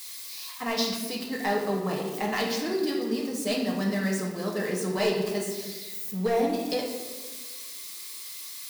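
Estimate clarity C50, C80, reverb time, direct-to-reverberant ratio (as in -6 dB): 3.5 dB, 6.0 dB, 1.3 s, -1.5 dB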